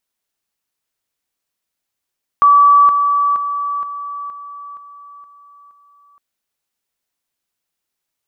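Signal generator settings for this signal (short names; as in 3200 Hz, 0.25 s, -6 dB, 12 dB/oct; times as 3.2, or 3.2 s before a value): level ladder 1150 Hz -5.5 dBFS, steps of -6 dB, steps 8, 0.47 s 0.00 s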